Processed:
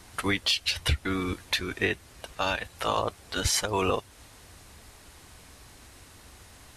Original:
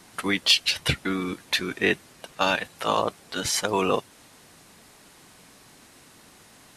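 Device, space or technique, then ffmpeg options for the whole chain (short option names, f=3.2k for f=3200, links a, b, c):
car stereo with a boomy subwoofer: -af "lowshelf=f=110:t=q:w=1.5:g=13,alimiter=limit=-14dB:level=0:latency=1:release=282"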